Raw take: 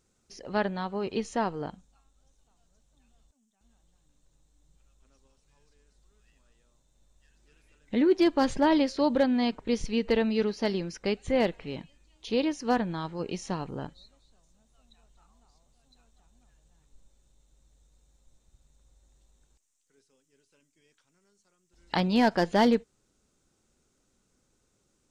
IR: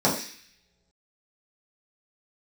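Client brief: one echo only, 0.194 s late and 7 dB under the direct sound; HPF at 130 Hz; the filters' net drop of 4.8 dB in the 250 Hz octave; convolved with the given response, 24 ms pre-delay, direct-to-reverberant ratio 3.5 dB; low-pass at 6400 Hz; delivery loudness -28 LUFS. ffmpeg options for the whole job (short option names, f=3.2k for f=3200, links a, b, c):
-filter_complex "[0:a]highpass=130,lowpass=6.4k,equalizer=f=250:t=o:g=-5.5,aecho=1:1:194:0.447,asplit=2[a][b];[1:a]atrim=start_sample=2205,adelay=24[c];[b][c]afir=irnorm=-1:irlink=0,volume=-20dB[d];[a][d]amix=inputs=2:normalize=0,volume=-2.5dB"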